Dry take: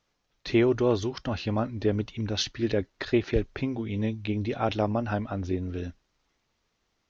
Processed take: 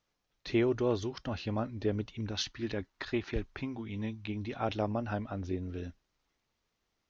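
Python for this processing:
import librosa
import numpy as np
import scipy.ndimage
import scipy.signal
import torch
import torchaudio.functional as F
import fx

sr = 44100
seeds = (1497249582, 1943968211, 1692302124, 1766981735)

y = fx.graphic_eq(x, sr, hz=(125, 500, 1000), db=(-3, -7, 5), at=(2.31, 4.61))
y = y * librosa.db_to_amplitude(-6.0)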